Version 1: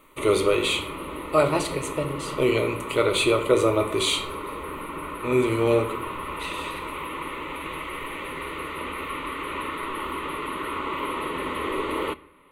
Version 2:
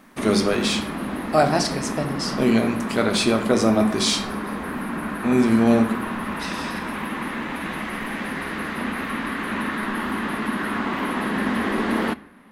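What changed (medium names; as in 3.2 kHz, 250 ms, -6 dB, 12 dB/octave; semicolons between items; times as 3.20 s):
speech -3.0 dB; master: remove static phaser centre 1.1 kHz, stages 8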